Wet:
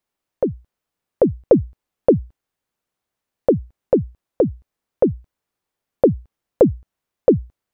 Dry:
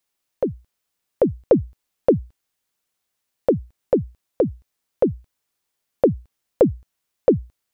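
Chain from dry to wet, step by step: treble shelf 2.1 kHz -11.5 dB; trim +3 dB

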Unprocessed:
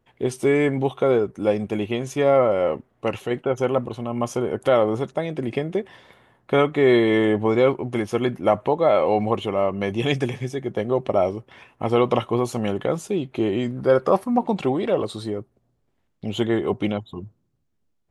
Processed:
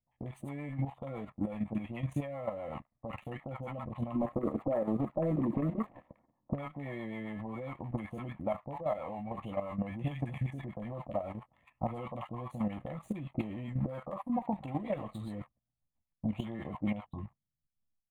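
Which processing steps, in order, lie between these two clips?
doubling 14 ms -8 dB; compression 10:1, threshold -28 dBFS, peak gain reduction 18 dB; 4.15–6.54 s: FFT filter 130 Hz 0 dB, 310 Hz +14 dB, 1 kHz +1 dB, 4.4 kHz -24 dB; gate -44 dBFS, range -7 dB; waveshaping leveller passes 2; resonant high shelf 2.2 kHz -9.5 dB, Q 1.5; static phaser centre 1.5 kHz, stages 6; bands offset in time lows, highs 50 ms, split 900 Hz; rotary cabinet horn 7.5 Hz; level held to a coarse grid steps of 10 dB

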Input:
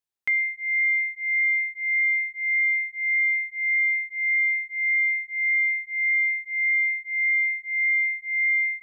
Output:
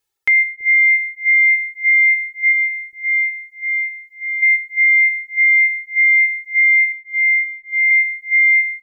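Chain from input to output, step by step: 2.51–4.42 s: peaking EQ 2.1 kHz -3.5 dB -> -13 dB 0.24 oct; comb 2.3 ms, depth 78%; bucket-brigade echo 331 ms, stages 1024, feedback 79%, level -14.5 dB; reverb removal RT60 1.9 s; 6.92–7.91 s: tilt EQ -5 dB/octave; loudness maximiser +19.5 dB; trim -7.5 dB

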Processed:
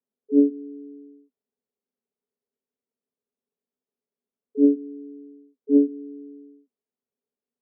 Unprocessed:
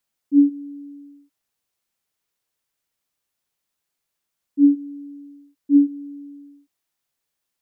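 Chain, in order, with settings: self-modulated delay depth 0.071 ms; harmony voices +7 st -18 dB; two resonant band-passes 320 Hz, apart 0.73 oct; trim +7.5 dB

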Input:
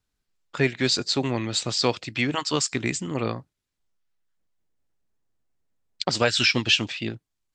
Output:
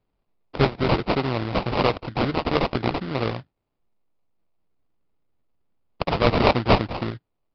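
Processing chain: dynamic bell 250 Hz, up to -5 dB, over -35 dBFS, Q 0.99; sample-rate reducer 1.7 kHz, jitter 20%; resampled via 11.025 kHz; trim +4 dB

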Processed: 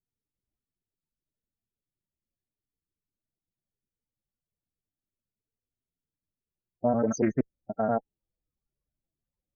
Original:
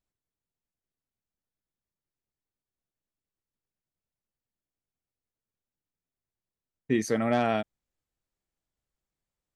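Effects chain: slices played last to first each 95 ms, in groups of 6; in parallel at -10.5 dB: one-sided clip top -34 dBFS, bottom -15.5 dBFS; on the sum: loudest bins only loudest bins 16; loudspeaker Doppler distortion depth 0.26 ms

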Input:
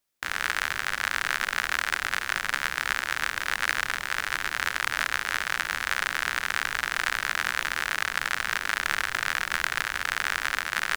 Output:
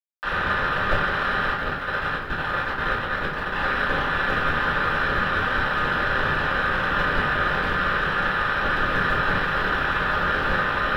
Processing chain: ten-band graphic EQ 250 Hz -6 dB, 2 kHz -11 dB, 16 kHz -11 dB; companded quantiser 2-bit; 1.51–3.57 s: AM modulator 63 Hz, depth 100%; fuzz box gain 34 dB, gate -32 dBFS; distance through air 390 m; simulated room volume 44 m³, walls mixed, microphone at 2.5 m; bit-crushed delay 549 ms, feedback 80%, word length 8-bit, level -13.5 dB; trim -8.5 dB

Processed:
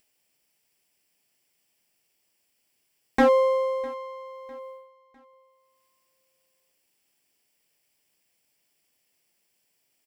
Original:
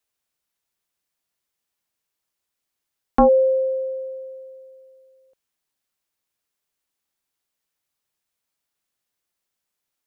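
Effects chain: comb filter that takes the minimum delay 0.38 ms; high-pass 160 Hz 6 dB/octave; gate -47 dBFS, range -39 dB; upward compressor, threshold -32 dBFS; on a send: feedback delay 653 ms, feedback 41%, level -22.5 dB; on the sum: trim -2 dB

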